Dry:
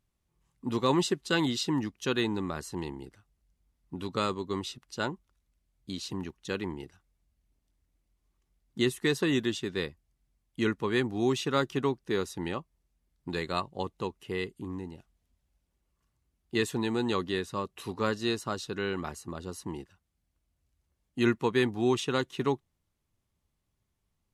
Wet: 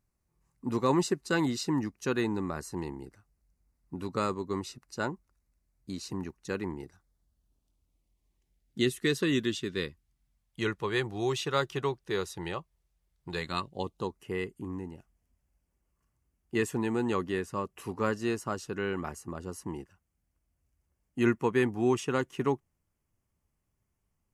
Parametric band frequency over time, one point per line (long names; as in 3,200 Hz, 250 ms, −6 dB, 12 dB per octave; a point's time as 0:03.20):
parametric band −15 dB 0.42 octaves
0:06.74 3,300 Hz
0:09.24 790 Hz
0:09.81 790 Hz
0:10.66 250 Hz
0:13.35 250 Hz
0:13.72 1,100 Hz
0:14.24 3,800 Hz